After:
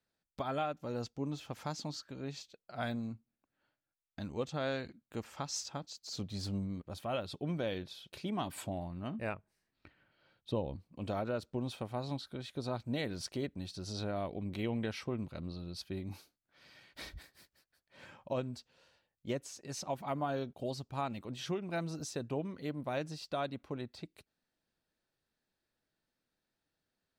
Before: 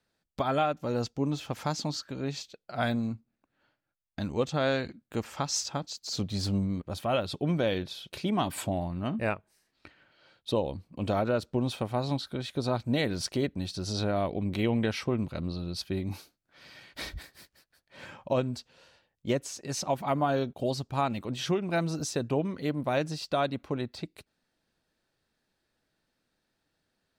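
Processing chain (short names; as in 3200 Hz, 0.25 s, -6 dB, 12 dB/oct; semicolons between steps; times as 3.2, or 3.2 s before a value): 9.34–10.76 tone controls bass +6 dB, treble -7 dB; gain -8.5 dB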